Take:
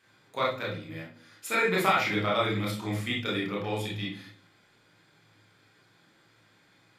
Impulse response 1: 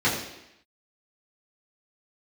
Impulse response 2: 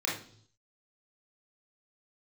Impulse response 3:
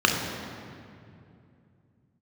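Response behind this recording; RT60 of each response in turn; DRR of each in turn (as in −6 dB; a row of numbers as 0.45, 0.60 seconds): 2; 0.85 s, non-exponential decay, 2.5 s; −9.5, −4.5, 0.5 decibels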